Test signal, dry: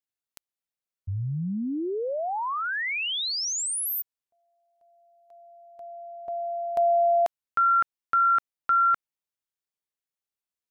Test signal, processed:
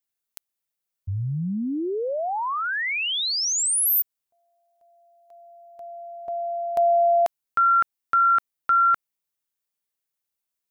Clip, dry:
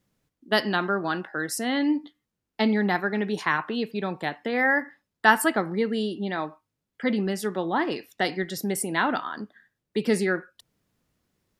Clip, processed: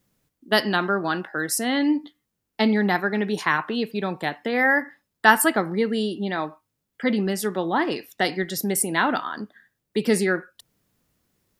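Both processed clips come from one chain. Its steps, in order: high shelf 9100 Hz +8.5 dB; gain +2.5 dB

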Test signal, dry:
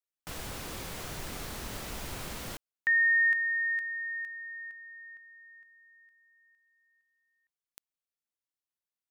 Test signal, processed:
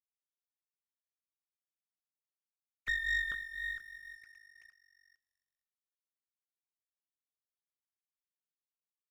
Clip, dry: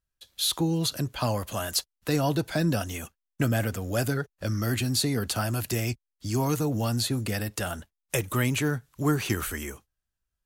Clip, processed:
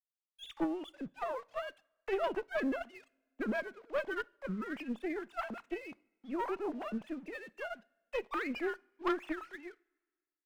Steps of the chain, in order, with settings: sine-wave speech; dynamic EQ 810 Hz, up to +5 dB, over -38 dBFS, Q 0.73; tube stage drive 19 dB, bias 0.6; crossover distortion -47.5 dBFS; two-slope reverb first 0.46 s, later 1.8 s, from -18 dB, DRR 18 dB; upward expander 1.5:1, over -35 dBFS; gain -6.5 dB

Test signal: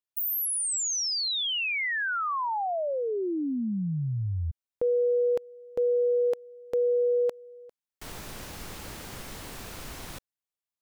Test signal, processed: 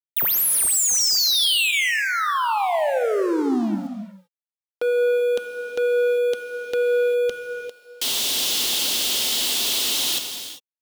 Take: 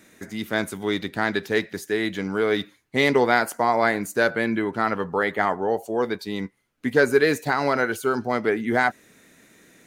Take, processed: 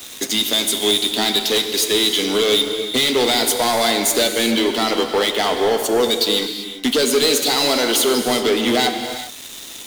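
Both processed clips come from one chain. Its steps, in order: elliptic high-pass 230 Hz, stop band 40 dB; resonant high shelf 2300 Hz +12.5 dB, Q 3; notch 2400 Hz, Q 19; compressor 2:1, threshold -29 dBFS; sample leveller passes 5; sample gate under -41 dBFS; non-linear reverb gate 0.42 s flat, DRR 5.5 dB; gain -4.5 dB

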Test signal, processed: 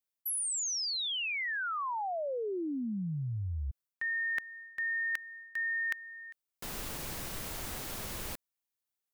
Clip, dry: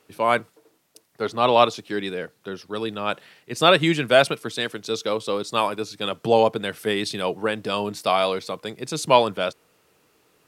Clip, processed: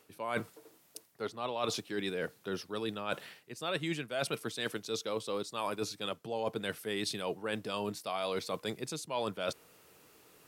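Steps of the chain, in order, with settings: high shelf 9500 Hz +7.5 dB; reverse; compressor 10:1, threshold -32 dBFS; reverse

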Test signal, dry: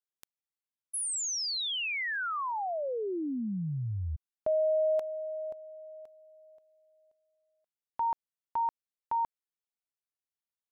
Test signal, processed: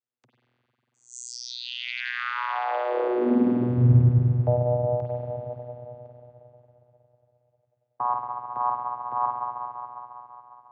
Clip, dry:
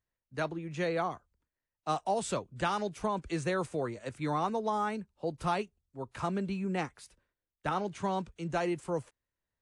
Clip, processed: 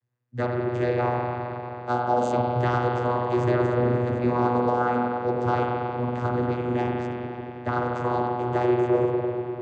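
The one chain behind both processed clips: spring tank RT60 3.6 s, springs 45/49 ms, chirp 65 ms, DRR -2 dB; vocoder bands 16, saw 122 Hz; gain +7 dB

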